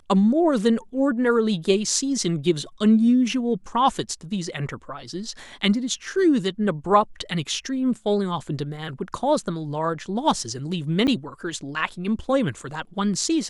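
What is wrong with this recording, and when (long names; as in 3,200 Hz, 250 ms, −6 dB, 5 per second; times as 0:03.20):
0:11.07–0:11.08: drop-out 7.7 ms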